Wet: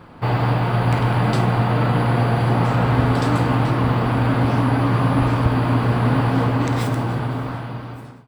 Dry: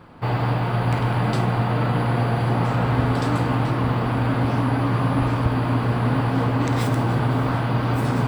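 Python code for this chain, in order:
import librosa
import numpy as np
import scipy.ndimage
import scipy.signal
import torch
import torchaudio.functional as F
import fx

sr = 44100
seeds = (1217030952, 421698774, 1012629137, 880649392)

y = fx.fade_out_tail(x, sr, length_s=1.97)
y = y * 10.0 ** (3.0 / 20.0)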